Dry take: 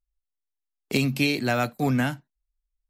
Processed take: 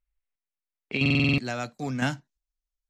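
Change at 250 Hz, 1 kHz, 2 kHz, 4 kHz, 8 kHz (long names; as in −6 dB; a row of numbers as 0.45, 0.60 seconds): −2.5, −5.5, 0.0, −1.0, −6.0 decibels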